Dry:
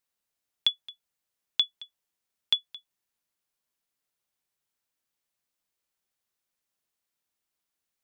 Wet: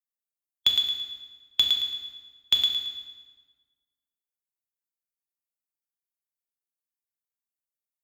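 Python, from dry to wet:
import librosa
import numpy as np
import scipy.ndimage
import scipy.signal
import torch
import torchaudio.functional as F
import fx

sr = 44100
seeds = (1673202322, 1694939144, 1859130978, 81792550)

y = fx.bin_expand(x, sr, power=1.5)
y = fx.cheby_harmonics(y, sr, harmonics=(4, 6, 8), levels_db=(-27, -20, -25), full_scale_db=-12.0)
y = fx.echo_thinned(y, sr, ms=111, feedback_pct=32, hz=420.0, wet_db=-5.5)
y = fx.rev_fdn(y, sr, rt60_s=1.4, lf_ratio=1.1, hf_ratio=0.8, size_ms=23.0, drr_db=1.0)
y = y * librosa.db_to_amplitude(3.0)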